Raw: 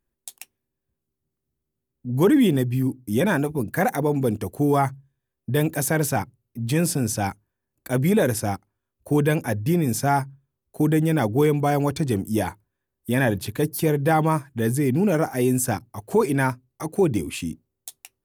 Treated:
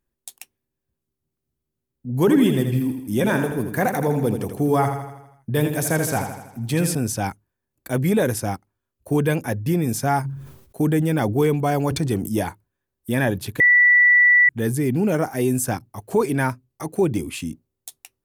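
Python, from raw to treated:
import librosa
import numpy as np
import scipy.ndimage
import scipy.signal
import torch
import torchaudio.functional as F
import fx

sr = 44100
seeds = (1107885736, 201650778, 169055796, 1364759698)

y = fx.echo_feedback(x, sr, ms=81, feedback_pct=54, wet_db=-7.5, at=(2.19, 6.95))
y = fx.sustainer(y, sr, db_per_s=70.0, at=(10.23, 12.41), fade=0.02)
y = fx.edit(y, sr, fx.bleep(start_s=13.6, length_s=0.89, hz=1960.0, db=-10.5), tone=tone)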